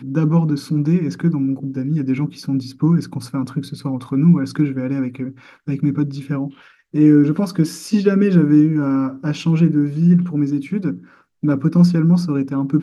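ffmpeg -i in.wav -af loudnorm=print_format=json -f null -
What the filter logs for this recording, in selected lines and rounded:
"input_i" : "-17.8",
"input_tp" : "-2.4",
"input_lra" : "4.3",
"input_thresh" : "-28.1",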